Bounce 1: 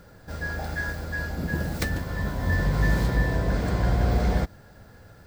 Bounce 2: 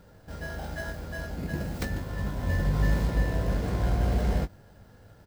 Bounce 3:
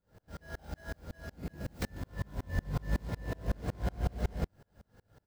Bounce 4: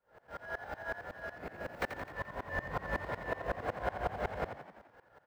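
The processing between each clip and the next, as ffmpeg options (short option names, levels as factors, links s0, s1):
-filter_complex "[0:a]asplit=2[s0][s1];[s1]acrusher=samples=19:mix=1:aa=0.000001,volume=0.562[s2];[s0][s2]amix=inputs=2:normalize=0,asplit=2[s3][s4];[s4]adelay=20,volume=0.316[s5];[s3][s5]amix=inputs=2:normalize=0,volume=0.422"
-af "aeval=exprs='val(0)*pow(10,-33*if(lt(mod(-5.4*n/s,1),2*abs(-5.4)/1000),1-mod(-5.4*n/s,1)/(2*abs(-5.4)/1000),(mod(-5.4*n/s,1)-2*abs(-5.4)/1000)/(1-2*abs(-5.4)/1000))/20)':c=same"
-filter_complex "[0:a]acrossover=split=460 2500:gain=0.1 1 0.126[s0][s1][s2];[s0][s1][s2]amix=inputs=3:normalize=0,asplit=8[s3][s4][s5][s6][s7][s8][s9][s10];[s4]adelay=86,afreqshift=40,volume=0.355[s11];[s5]adelay=172,afreqshift=80,volume=0.202[s12];[s6]adelay=258,afreqshift=120,volume=0.115[s13];[s7]adelay=344,afreqshift=160,volume=0.0661[s14];[s8]adelay=430,afreqshift=200,volume=0.0376[s15];[s9]adelay=516,afreqshift=240,volume=0.0214[s16];[s10]adelay=602,afreqshift=280,volume=0.0122[s17];[s3][s11][s12][s13][s14][s15][s16][s17]amix=inputs=8:normalize=0,volume=2.66"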